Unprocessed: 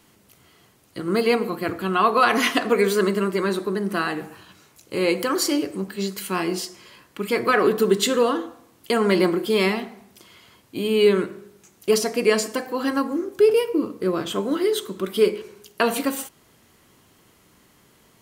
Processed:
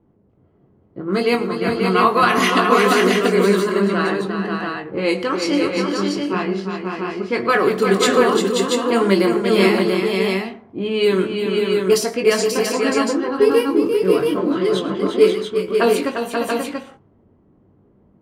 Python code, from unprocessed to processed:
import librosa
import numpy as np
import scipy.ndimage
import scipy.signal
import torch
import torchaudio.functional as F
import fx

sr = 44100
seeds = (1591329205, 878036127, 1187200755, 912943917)

y = fx.chorus_voices(x, sr, voices=2, hz=0.8, base_ms=21, depth_ms=1.2, mix_pct=35)
y = fx.env_lowpass(y, sr, base_hz=480.0, full_db=-18.0)
y = fx.echo_multitap(y, sr, ms=(110, 349, 535, 685), db=(-19.5, -7.0, -5.0, -4.5))
y = y * librosa.db_to_amplitude(5.0)